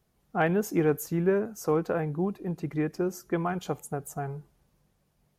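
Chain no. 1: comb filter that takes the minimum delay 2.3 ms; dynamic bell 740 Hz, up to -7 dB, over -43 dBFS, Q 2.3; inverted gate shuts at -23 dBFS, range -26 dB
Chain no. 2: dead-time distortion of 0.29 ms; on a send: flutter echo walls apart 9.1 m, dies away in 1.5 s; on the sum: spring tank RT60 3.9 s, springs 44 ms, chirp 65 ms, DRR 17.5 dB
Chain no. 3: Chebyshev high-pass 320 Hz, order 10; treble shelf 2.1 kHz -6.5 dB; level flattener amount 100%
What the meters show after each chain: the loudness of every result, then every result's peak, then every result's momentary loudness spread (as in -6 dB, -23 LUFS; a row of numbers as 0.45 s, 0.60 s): -40.0 LUFS, -26.0 LUFS, -22.0 LUFS; -20.0 dBFS, -11.0 dBFS, -4.5 dBFS; 11 LU, 12 LU, 11 LU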